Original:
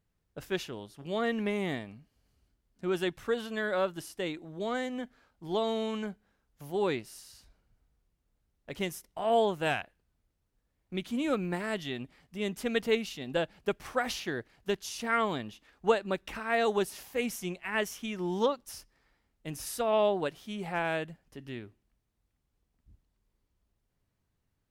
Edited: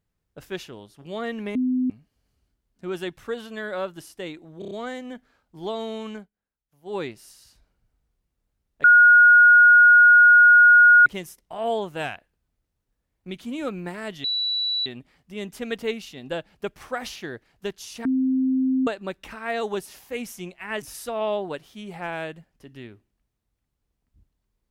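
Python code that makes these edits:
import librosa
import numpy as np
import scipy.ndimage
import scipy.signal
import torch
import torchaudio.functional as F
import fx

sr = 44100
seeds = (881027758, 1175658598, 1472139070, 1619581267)

y = fx.edit(x, sr, fx.bleep(start_s=1.55, length_s=0.35, hz=254.0, db=-19.5),
    fx.stutter(start_s=4.59, slice_s=0.03, count=5),
    fx.fade_down_up(start_s=6.03, length_s=0.81, db=-18.0, fade_s=0.14),
    fx.insert_tone(at_s=8.72, length_s=2.22, hz=1440.0, db=-9.0),
    fx.insert_tone(at_s=11.9, length_s=0.62, hz=3940.0, db=-22.0),
    fx.bleep(start_s=15.09, length_s=0.82, hz=261.0, db=-18.5),
    fx.cut(start_s=17.86, length_s=1.68), tone=tone)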